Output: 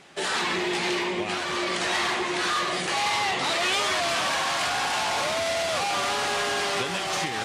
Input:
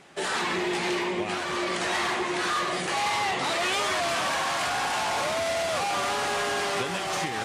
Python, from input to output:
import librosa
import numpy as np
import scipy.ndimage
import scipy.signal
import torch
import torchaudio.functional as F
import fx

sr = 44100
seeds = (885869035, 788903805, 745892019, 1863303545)

y = fx.peak_eq(x, sr, hz=4000.0, db=4.0, octaves=1.8)